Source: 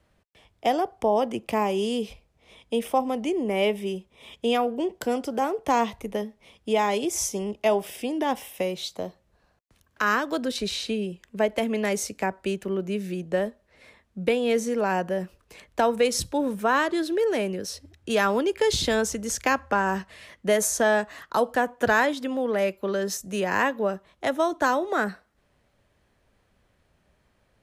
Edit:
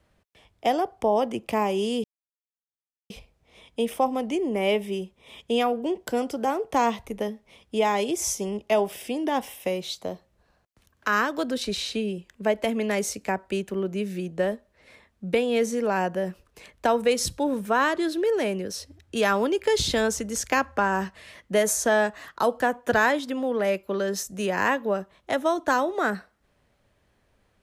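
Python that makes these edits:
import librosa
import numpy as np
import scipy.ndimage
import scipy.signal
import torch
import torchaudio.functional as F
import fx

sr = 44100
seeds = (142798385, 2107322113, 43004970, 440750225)

y = fx.edit(x, sr, fx.insert_silence(at_s=2.04, length_s=1.06), tone=tone)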